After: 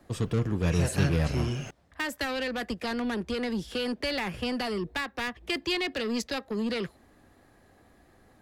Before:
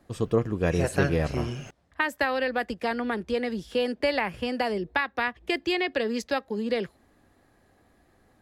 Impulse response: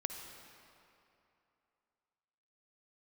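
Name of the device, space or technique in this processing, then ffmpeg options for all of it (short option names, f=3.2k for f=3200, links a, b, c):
one-band saturation: -filter_complex "[0:a]acrossover=split=220|2700[a][b][c];[b]asoftclip=type=tanh:threshold=-34.5dB[d];[a][d][c]amix=inputs=3:normalize=0,volume=3dB"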